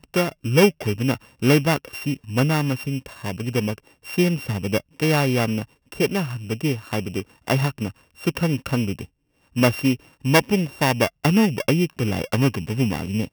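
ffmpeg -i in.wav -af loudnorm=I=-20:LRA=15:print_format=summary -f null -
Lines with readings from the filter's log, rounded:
Input Integrated:    -22.3 LUFS
Input True Peak:      -2.1 dBTP
Input LRA:             3.4 LU
Input Threshold:     -32.4 LUFS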